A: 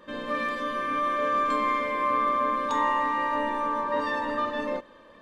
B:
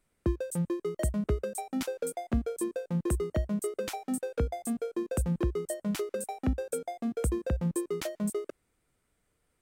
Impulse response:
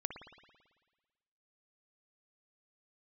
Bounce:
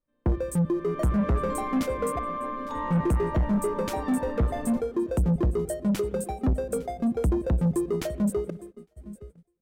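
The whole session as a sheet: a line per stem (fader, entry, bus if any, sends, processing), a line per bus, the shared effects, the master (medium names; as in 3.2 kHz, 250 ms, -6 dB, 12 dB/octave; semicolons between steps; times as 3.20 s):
0.64 s -20 dB -> 1.14 s -7 dB, 0.00 s, no send, no echo send, tilt EQ -2.5 dB/octave
-0.5 dB, 0.00 s, muted 2.19–2.90 s, send -11.5 dB, echo send -18.5 dB, bass shelf 390 Hz +12 dB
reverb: on, RT60 1.4 s, pre-delay 55 ms
echo: feedback delay 858 ms, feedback 42%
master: gate -43 dBFS, range -23 dB; saturation -19 dBFS, distortion -9 dB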